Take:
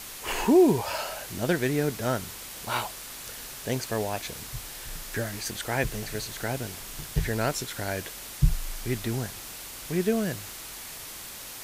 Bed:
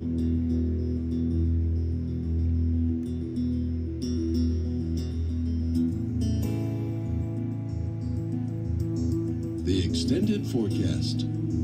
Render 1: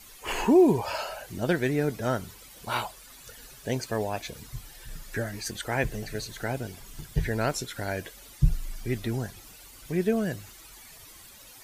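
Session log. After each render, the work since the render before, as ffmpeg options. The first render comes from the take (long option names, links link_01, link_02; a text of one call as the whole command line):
ffmpeg -i in.wav -af "afftdn=noise_reduction=13:noise_floor=-41" out.wav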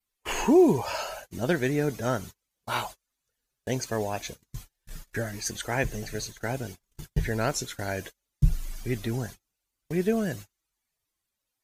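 ffmpeg -i in.wav -af "agate=range=-35dB:threshold=-39dB:ratio=16:detection=peak,adynamicequalizer=threshold=0.001:dfrequency=6400:dqfactor=6:tfrequency=6400:tqfactor=6:attack=5:release=100:ratio=0.375:range=4:mode=boostabove:tftype=bell" out.wav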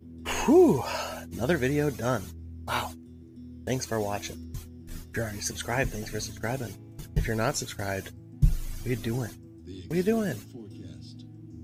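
ffmpeg -i in.wav -i bed.wav -filter_complex "[1:a]volume=-17dB[link_01];[0:a][link_01]amix=inputs=2:normalize=0" out.wav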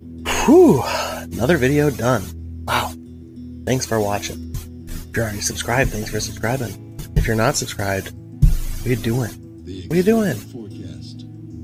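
ffmpeg -i in.wav -af "volume=10dB,alimiter=limit=-3dB:level=0:latency=1" out.wav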